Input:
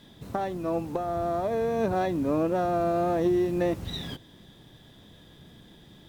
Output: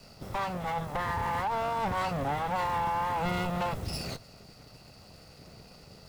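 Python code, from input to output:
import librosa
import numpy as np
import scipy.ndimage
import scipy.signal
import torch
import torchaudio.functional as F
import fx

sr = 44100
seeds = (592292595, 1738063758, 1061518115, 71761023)

y = fx.lower_of_two(x, sr, delay_ms=1.5)
y = fx.formant_shift(y, sr, semitones=5)
y = 10.0 ** (-26.0 / 20.0) * np.tanh(y / 10.0 ** (-26.0 / 20.0))
y = y * 10.0 ** (2.0 / 20.0)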